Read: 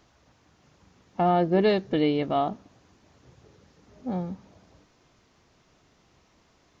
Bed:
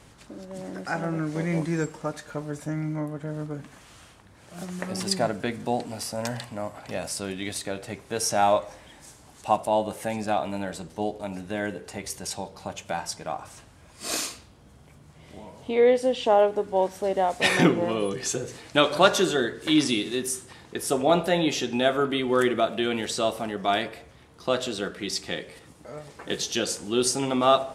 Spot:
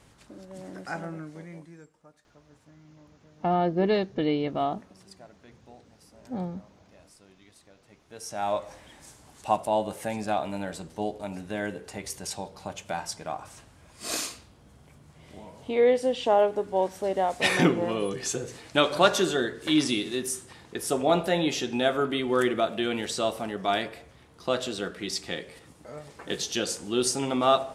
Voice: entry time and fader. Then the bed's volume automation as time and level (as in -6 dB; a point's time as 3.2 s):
2.25 s, -2.5 dB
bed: 0.95 s -5 dB
1.89 s -25 dB
7.77 s -25 dB
8.71 s -2 dB